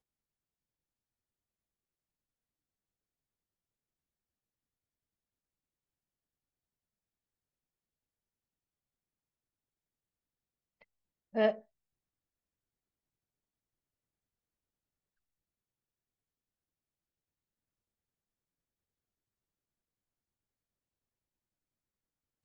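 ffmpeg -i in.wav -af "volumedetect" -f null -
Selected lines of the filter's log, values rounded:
mean_volume: -48.0 dB
max_volume: -16.9 dB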